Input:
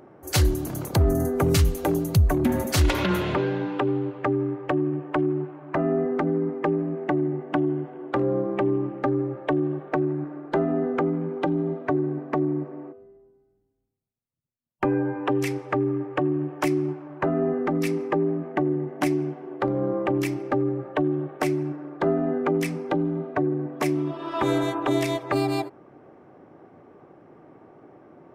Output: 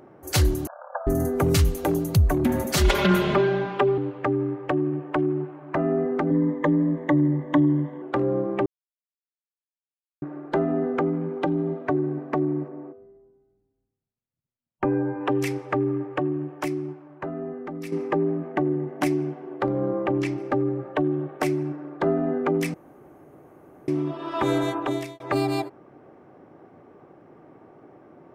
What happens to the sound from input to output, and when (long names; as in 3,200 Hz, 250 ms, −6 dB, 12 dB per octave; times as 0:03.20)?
0:00.67–0:01.07: linear-phase brick-wall band-pass 500–1,700 Hz
0:02.76–0:03.98: comb filter 5 ms, depth 100%
0:06.30–0:08.02: EQ curve with evenly spaced ripples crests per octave 1.1, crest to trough 15 dB
0:08.66–0:10.22: silence
0:12.68–0:15.21: low-pass filter 1,600 Hz 6 dB per octave
0:15.97–0:17.92: fade out quadratic, to −10 dB
0:19.91–0:20.38: high-frequency loss of the air 74 metres
0:22.74–0:23.88: fill with room tone
0:24.77–0:25.20: fade out